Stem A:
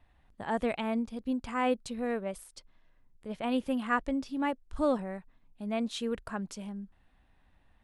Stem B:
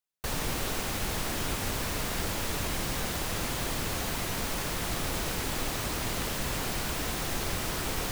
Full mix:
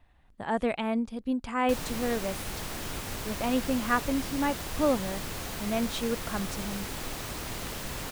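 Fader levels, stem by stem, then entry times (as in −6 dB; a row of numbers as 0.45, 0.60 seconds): +2.5, −4.5 decibels; 0.00, 1.45 seconds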